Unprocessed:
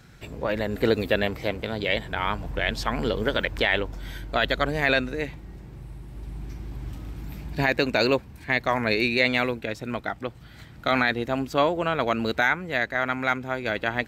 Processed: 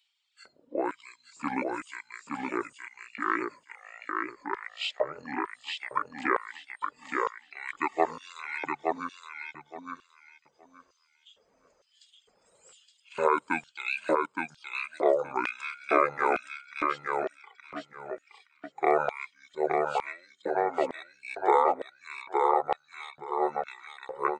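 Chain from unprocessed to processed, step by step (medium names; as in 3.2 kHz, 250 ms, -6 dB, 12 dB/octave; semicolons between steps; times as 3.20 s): spectral noise reduction 12 dB; speed mistake 78 rpm record played at 45 rpm; reverb removal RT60 1.5 s; feedback delay 869 ms, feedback 18%, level -3.5 dB; LFO high-pass square 1.1 Hz 500–3200 Hz; trim -3 dB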